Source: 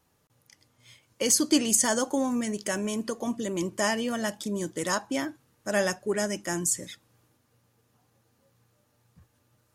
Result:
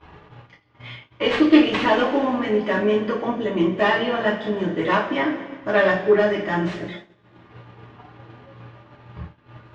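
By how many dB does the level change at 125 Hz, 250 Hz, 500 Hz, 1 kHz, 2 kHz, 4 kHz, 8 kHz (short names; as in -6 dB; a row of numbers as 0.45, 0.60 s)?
+8.5 dB, +8.0 dB, +10.5 dB, +10.5 dB, +10.0 dB, +4.0 dB, under -25 dB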